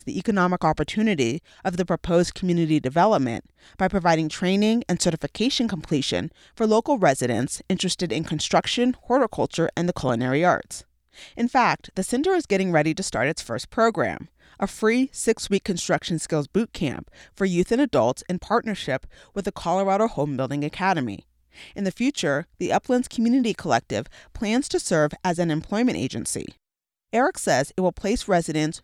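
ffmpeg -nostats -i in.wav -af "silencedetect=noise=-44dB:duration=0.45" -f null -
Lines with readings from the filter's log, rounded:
silence_start: 26.52
silence_end: 27.13 | silence_duration: 0.61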